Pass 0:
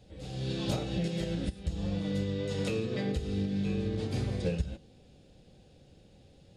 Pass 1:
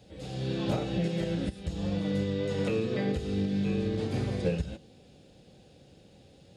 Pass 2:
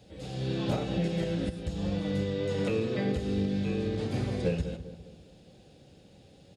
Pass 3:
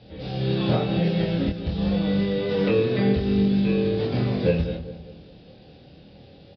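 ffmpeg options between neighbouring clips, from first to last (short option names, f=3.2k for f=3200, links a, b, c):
-filter_complex "[0:a]acrossover=split=2600[a][b];[b]acompressor=threshold=-51dB:ratio=4:attack=1:release=60[c];[a][c]amix=inputs=2:normalize=0,highpass=f=120:p=1,volume=4dB"
-filter_complex "[0:a]asplit=2[a][b];[b]adelay=200,lowpass=f=1.4k:p=1,volume=-11dB,asplit=2[c][d];[d]adelay=200,lowpass=f=1.4k:p=1,volume=0.46,asplit=2[e][f];[f]adelay=200,lowpass=f=1.4k:p=1,volume=0.46,asplit=2[g][h];[h]adelay=200,lowpass=f=1.4k:p=1,volume=0.46,asplit=2[i][j];[j]adelay=200,lowpass=f=1.4k:p=1,volume=0.46[k];[a][c][e][g][i][k]amix=inputs=6:normalize=0"
-filter_complex "[0:a]asplit=2[a][b];[b]adelay=25,volume=-2.5dB[c];[a][c]amix=inputs=2:normalize=0,aresample=11025,aresample=44100,volume=5.5dB"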